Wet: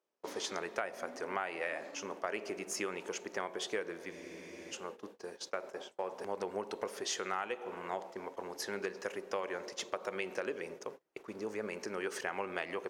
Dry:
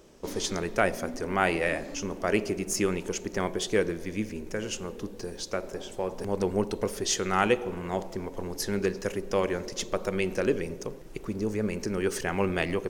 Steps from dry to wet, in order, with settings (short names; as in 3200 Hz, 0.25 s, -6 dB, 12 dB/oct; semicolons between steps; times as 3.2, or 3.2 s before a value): gate -38 dBFS, range -26 dB; HPF 860 Hz 12 dB/oct; tilt -3.5 dB/oct; compressor 10:1, threshold -33 dBFS, peak gain reduction 12.5 dB; spectral freeze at 4.14, 0.58 s; gain +1 dB